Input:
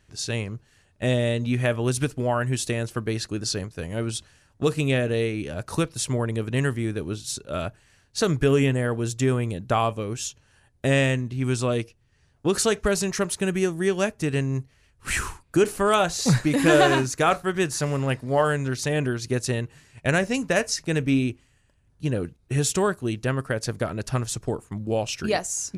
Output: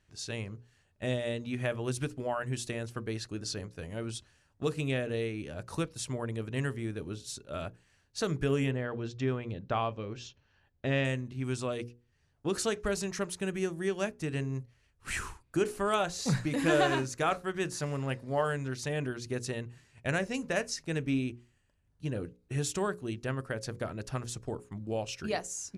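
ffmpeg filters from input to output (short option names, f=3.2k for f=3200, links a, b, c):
-filter_complex "[0:a]asettb=1/sr,asplit=3[a][b][c];[a]atrim=end=8.714[d];[b]atrim=start=8.71:end=11.05,asetpts=PTS-STARTPTS,afade=t=in:d=0.004:c=qsin,afade=t=out:st=2.336:d=0.004:c=qsin,lowpass=f=5k:w=0.5412,lowpass=f=5k:w=1.3066[e];[c]atrim=start=11.046[f];[d][e]acrossfade=d=0.004:c1=hsin:c2=qsin[g];[g][f]acrossfade=d=0.004:c1=qsin:c2=hsin,highshelf=f=11k:g=-7,bandreject=f=60:t=h:w=6,bandreject=f=120:t=h:w=6,bandreject=f=180:t=h:w=6,bandreject=f=240:t=h:w=6,bandreject=f=300:t=h:w=6,bandreject=f=360:t=h:w=6,bandreject=f=420:t=h:w=6,bandreject=f=480:t=h:w=6,bandreject=f=540:t=h:w=6,volume=-8.5dB"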